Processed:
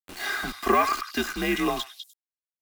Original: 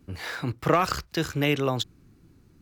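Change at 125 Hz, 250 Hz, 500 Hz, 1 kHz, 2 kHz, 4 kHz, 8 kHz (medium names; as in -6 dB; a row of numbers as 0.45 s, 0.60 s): -13.5 dB, 0.0 dB, -1.5 dB, +3.0 dB, +3.0 dB, 0.0 dB, +2.0 dB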